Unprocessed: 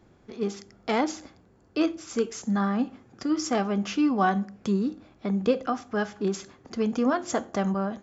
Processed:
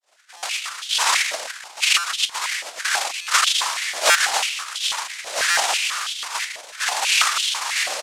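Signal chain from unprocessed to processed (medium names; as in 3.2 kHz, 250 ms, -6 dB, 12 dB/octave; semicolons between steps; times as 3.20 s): comb 6.7 ms, depth 42%; expander -52 dBFS; random-step tremolo 1.2 Hz; reverberation RT60 1.3 s, pre-delay 14 ms, DRR -8 dB; noise-vocoded speech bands 1; 2.25–2.85 s: compressor with a negative ratio -22 dBFS, ratio -0.5; buffer glitch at 0.37/1.98/3.21/4.09/5.50 s, samples 256, times 9; step-sequenced high-pass 6.1 Hz 610–3200 Hz; trim -9 dB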